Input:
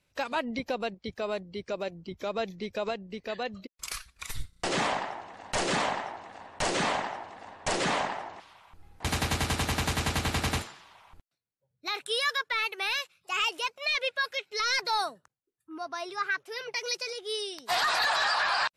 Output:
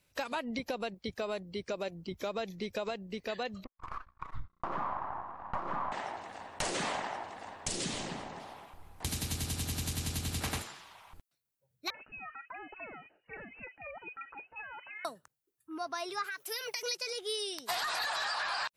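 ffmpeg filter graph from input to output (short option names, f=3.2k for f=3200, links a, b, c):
-filter_complex "[0:a]asettb=1/sr,asplit=3[a][b][c];[a]atrim=end=3.644[d];[b]atrim=start=3.64:end=5.92,asetpts=PTS-STARTPTS,afade=t=in:d=0.004:c=qsin,afade=t=out:st=2.276:d=0.004:c=qsin,equalizer=f=450:t=o:w=0.32:g=-11.5,aeval=exprs='max(val(0),0)':c=same,lowpass=f=1.1k:t=q:w=4.6[e];[c]atrim=start=5.916[f];[d][e]acrossfade=d=0.004:c1=hsin:c2=qsin[g];[g][f]acrossfade=d=0.004:c1=qsin:c2=hsin,asettb=1/sr,asplit=3[h][i][j];[h]atrim=end=7.614[k];[i]atrim=start=7.61:end=10.41,asetpts=PTS-STARTPTS,afade=t=in:d=0.004:c=qsin,afade=t=out:st=2.796:d=0.004:c=qsin,asplit=2[l][m];[m]adelay=257,lowpass=f=1.2k:p=1,volume=-7.5dB,asplit=2[n][o];[o]adelay=257,lowpass=f=1.2k:p=1,volume=0.24,asplit=2[p][q];[q]adelay=257,lowpass=f=1.2k:p=1,volume=0.24[r];[l][n][p][r]amix=inputs=4:normalize=0,atrim=end_sample=123480,acrossover=split=360|3000[s][t][u];[t]acompressor=threshold=-43dB:ratio=6:attack=3.2:release=140:knee=2.83:detection=peak[v];[s][v][u]amix=inputs=3:normalize=0[w];[j]atrim=start=10.406[x];[k][w]acrossfade=d=0.004:c1=hsin:c2=qsin[y];[y][x]acrossfade=d=0.004:c1=qsin:c2=hsin,asettb=1/sr,asplit=3[z][aa][ab];[z]atrim=end=11.904[ac];[aa]atrim=start=11.9:end=15.05,asetpts=PTS-STARTPTS,afade=t=in:d=0.004:c=qsin,afade=t=out:st=3.146:d=0.004:c=qsin,acompressor=threshold=-40dB:ratio=8:attack=3.2:release=140:knee=1:detection=peak,acrossover=split=990[ad][ae];[ad]adelay=40[af];[af][ae]amix=inputs=2:normalize=0,atrim=end_sample=138915,lowpass=f=2.6k:t=q:w=0.5098,lowpass=f=2.6k:t=q:w=0.6013,lowpass=f=2.6k:t=q:w=0.9,lowpass=f=2.6k:t=q:w=2.563,afreqshift=-3000[ag];[ab]atrim=start=15.046[ah];[ac][ag]acrossfade=d=0.004:c1=hsin:c2=qsin[ai];[ai][ah]acrossfade=d=0.004:c1=qsin:c2=hsin,asettb=1/sr,asplit=3[aj][ak][al];[aj]atrim=end=16.244[am];[ak]atrim=start=16.24:end=16.83,asetpts=PTS-STARTPTS,afade=t=in:d=0.004:c=qsin,afade=t=out:st=0.586:d=0.004:c=qsin,aemphasis=mode=production:type=bsi,acompressor=threshold=-33dB:ratio=10:attack=3.2:release=140:knee=1:detection=peak[an];[al]atrim=start=16.826[ao];[am][an]acrossfade=d=0.004:c1=hsin:c2=qsin[ap];[ap][ao]acrossfade=d=0.004:c1=qsin:c2=hsin,highshelf=f=9.4k:g=11,acompressor=threshold=-32dB:ratio=6"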